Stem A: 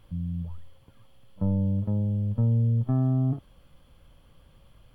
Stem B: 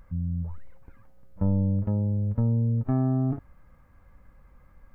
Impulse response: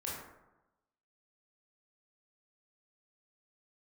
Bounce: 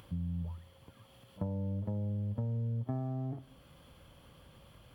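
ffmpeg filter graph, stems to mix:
-filter_complex "[0:a]acompressor=threshold=-31dB:ratio=6,volume=1.5dB[link_01];[1:a]aeval=exprs='sgn(val(0))*max(abs(val(0))-0.00501,0)':channel_layout=same,volume=-1,volume=-19.5dB,asplit=2[link_02][link_03];[link_03]volume=-8dB[link_04];[2:a]atrim=start_sample=2205[link_05];[link_04][link_05]afir=irnorm=-1:irlink=0[link_06];[link_01][link_02][link_06]amix=inputs=3:normalize=0,highpass=59,lowshelf=frequency=140:gain=-4,acompressor=mode=upward:threshold=-52dB:ratio=2.5"

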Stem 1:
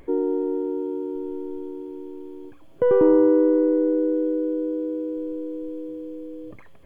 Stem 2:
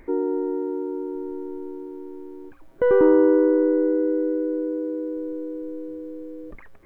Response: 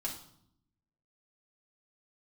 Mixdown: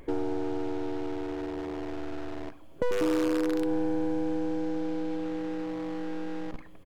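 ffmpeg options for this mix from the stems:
-filter_complex "[0:a]volume=-0.5dB[link_01];[1:a]acrusher=bits=3:dc=4:mix=0:aa=0.000001,adynamicsmooth=sensitivity=4:basefreq=1500,alimiter=limit=-12.5dB:level=0:latency=1:release=104,adelay=4.4,volume=0dB,asplit=2[link_02][link_03];[link_03]volume=-11dB[link_04];[2:a]atrim=start_sample=2205[link_05];[link_04][link_05]afir=irnorm=-1:irlink=0[link_06];[link_01][link_02][link_06]amix=inputs=3:normalize=0,acompressor=threshold=-33dB:ratio=2"

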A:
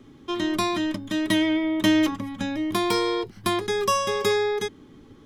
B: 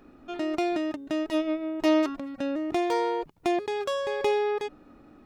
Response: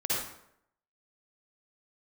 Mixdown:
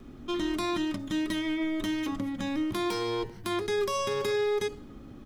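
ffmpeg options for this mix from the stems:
-filter_complex "[0:a]alimiter=limit=-19.5dB:level=0:latency=1:release=26,volume=-4dB[link_01];[1:a]acrossover=split=910|4900[link_02][link_03][link_04];[link_02]acompressor=threshold=-30dB:ratio=4[link_05];[link_03]acompressor=threshold=-44dB:ratio=4[link_06];[link_04]acompressor=threshold=-55dB:ratio=4[link_07];[link_05][link_06][link_07]amix=inputs=3:normalize=0,volume=34.5dB,asoftclip=hard,volume=-34.5dB,bass=frequency=250:gain=14,treble=frequency=4000:gain=8,adelay=1.8,volume=-3.5dB,asplit=2[link_08][link_09];[link_09]volume=-14.5dB[link_10];[2:a]atrim=start_sample=2205[link_11];[link_10][link_11]afir=irnorm=-1:irlink=0[link_12];[link_01][link_08][link_12]amix=inputs=3:normalize=0"

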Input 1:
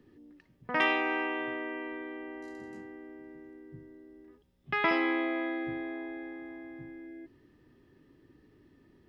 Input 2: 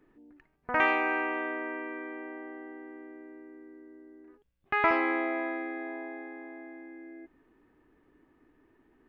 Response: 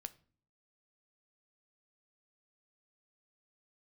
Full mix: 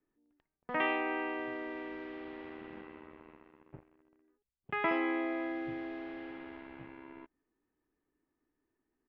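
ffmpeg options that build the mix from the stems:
-filter_complex "[0:a]acrusher=bits=6:mix=0:aa=0.5,lowpass=frequency=2900:width=0.5412,lowpass=frequency=2900:width=1.3066,volume=-3.5dB[link_01];[1:a]adelay=1.3,volume=-19dB[link_02];[link_01][link_02]amix=inputs=2:normalize=0"

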